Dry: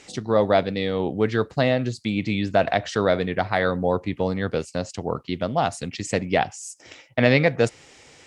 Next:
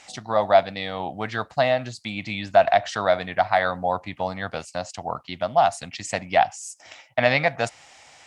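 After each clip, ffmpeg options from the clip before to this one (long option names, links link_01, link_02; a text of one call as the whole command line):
ffmpeg -i in.wav -af "lowshelf=frequency=550:width_type=q:width=3:gain=-7.5" out.wav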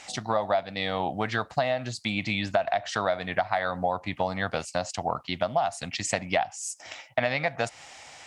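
ffmpeg -i in.wav -af "acompressor=threshold=-25dB:ratio=8,volume=3dB" out.wav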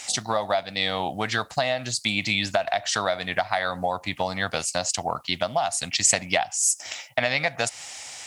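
ffmpeg -i in.wav -af "crystalizer=i=4:c=0" out.wav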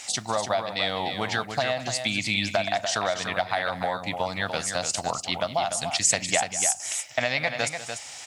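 ffmpeg -i in.wav -af "aecho=1:1:193|293:0.178|0.422,volume=-2dB" out.wav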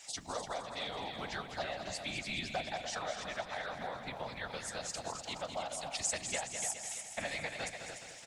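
ffmpeg -i in.wav -af "afftfilt=real='hypot(re,im)*cos(2*PI*random(0))':imag='hypot(re,im)*sin(2*PI*random(1))':win_size=512:overlap=0.75,aecho=1:1:210|420|630|840|1050|1260|1470:0.355|0.202|0.115|0.0657|0.0375|0.0213|0.0122,volume=-7.5dB" out.wav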